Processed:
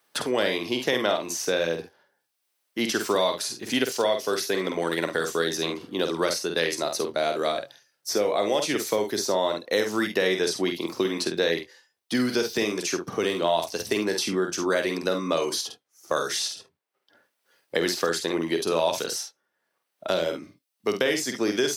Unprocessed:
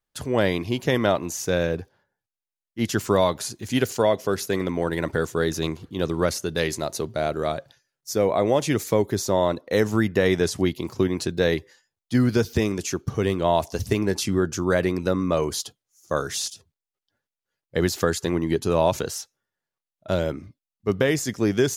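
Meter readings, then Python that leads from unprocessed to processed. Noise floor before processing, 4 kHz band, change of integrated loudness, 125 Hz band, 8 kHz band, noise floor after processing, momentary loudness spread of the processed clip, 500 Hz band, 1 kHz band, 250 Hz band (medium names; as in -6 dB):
under -85 dBFS, +4.0 dB, -2.0 dB, -13.5 dB, +0.5 dB, -79 dBFS, 6 LU, -2.0 dB, -1.5 dB, -4.5 dB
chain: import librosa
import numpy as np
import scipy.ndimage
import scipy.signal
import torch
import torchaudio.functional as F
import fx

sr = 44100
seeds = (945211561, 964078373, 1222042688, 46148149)

y = scipy.signal.sosfilt(scipy.signal.butter(2, 300.0, 'highpass', fs=sr, output='sos'), x)
y = fx.notch(y, sr, hz=6900.0, q=9.2)
y = fx.dynamic_eq(y, sr, hz=4700.0, q=0.73, threshold_db=-44.0, ratio=4.0, max_db=6)
y = fx.room_early_taps(y, sr, ms=(48, 71), db=(-6.0, -16.5))
y = fx.band_squash(y, sr, depth_pct=70)
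y = y * 10.0 ** (-2.5 / 20.0)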